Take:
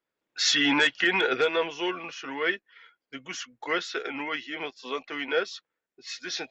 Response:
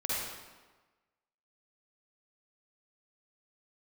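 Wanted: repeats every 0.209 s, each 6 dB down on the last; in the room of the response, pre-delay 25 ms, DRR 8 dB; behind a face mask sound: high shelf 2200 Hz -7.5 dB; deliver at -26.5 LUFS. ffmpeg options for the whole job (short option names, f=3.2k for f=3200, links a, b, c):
-filter_complex "[0:a]aecho=1:1:209|418|627|836|1045|1254:0.501|0.251|0.125|0.0626|0.0313|0.0157,asplit=2[a][b];[1:a]atrim=start_sample=2205,adelay=25[c];[b][c]afir=irnorm=-1:irlink=0,volume=-14.5dB[d];[a][d]amix=inputs=2:normalize=0,highshelf=f=2.2k:g=-7.5,volume=1.5dB"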